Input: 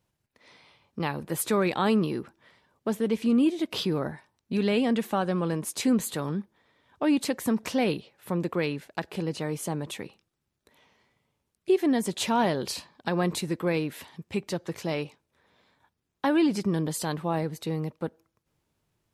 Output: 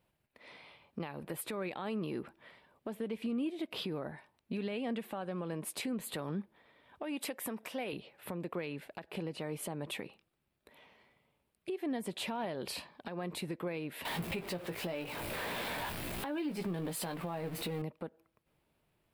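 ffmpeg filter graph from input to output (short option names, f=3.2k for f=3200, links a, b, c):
-filter_complex "[0:a]asettb=1/sr,asplit=3[a][b][c];[a]atrim=end=7.034[d];[b]atrim=start=7.03:end=7.93,asetpts=PTS-STARTPTS,afade=t=in:d=0.004:c=qsin,afade=t=out:st=0.896:d=0.004:c=qsin,highpass=f=390:p=1,highshelf=f=8.3k:g=6,bandreject=f=4.3k:w=11[e];[c]atrim=start=7.926[f];[d][e]acrossfade=d=0.004:c1=hsin:c2=qsin[g];[g][f]acrossfade=d=0.004:c1=qsin:c2=hsin,asettb=1/sr,asplit=3[h][i][j];[h]atrim=end=14.054[k];[i]atrim=start=14.05:end=17.82,asetpts=PTS-STARTPTS,afade=t=in:d=0.004:c=qsin,afade=t=out:st=3.766:d=0.004:c=qsin,aeval=exprs='val(0)+0.5*0.02*sgn(val(0))':c=same,asplit=2[l][m];[m]adelay=17,volume=-7dB[n];[l][n]amix=inputs=2:normalize=0,atrim=end_sample=166257[o];[j]atrim=start=17.816[p];[k][o]acrossfade=d=0.004:c1=hsin:c2=qsin[q];[q][p]acrossfade=d=0.004:c1=qsin:c2=hsin,equalizer=f=100:t=o:w=0.67:g=-5,equalizer=f=630:t=o:w=0.67:g=4,equalizer=f=2.5k:t=o:w=0.67:g=4,equalizer=f=6.3k:t=o:w=0.67:g=-11,acompressor=threshold=-31dB:ratio=3,alimiter=level_in=4.5dB:limit=-24dB:level=0:latency=1:release=307,volume=-4.5dB"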